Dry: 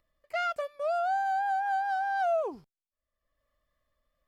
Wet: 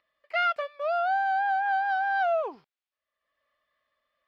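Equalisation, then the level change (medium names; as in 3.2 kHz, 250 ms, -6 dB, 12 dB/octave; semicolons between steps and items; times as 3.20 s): high-pass 1.1 kHz 6 dB/octave; distance through air 350 m; treble shelf 2.1 kHz +9 dB; +7.5 dB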